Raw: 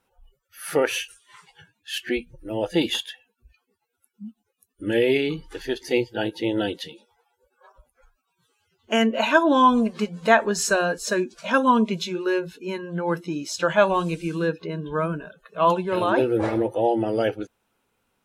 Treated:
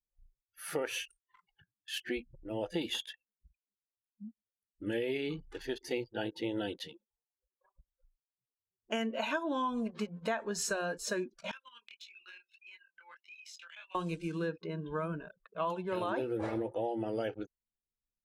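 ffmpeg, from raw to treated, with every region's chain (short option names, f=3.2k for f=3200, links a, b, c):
-filter_complex "[0:a]asettb=1/sr,asplit=3[a][b][c];[a]atrim=end=11.514[d];[b]atrim=start=11.51:end=13.95,asetpts=PTS-STARTPTS,afade=t=in:d=0.004:c=qsin,afade=t=out:st=2.436:d=0.004:c=qsin,highpass=f=2.4k:t=q:w=2.3,acompressor=threshold=-36dB:ratio=6:attack=3.2:release=140:knee=1:detection=peak,flanger=delay=18.5:depth=6.8:speed=1.6[e];[c]atrim=start=13.946[f];[d][e]acrossfade=d=0.004:c1=hsin:c2=qsin[g];[g][f]acrossfade=d=0.004:c1=qsin:c2=hsin,anlmdn=0.1,acompressor=threshold=-22dB:ratio=6,volume=-8.5dB"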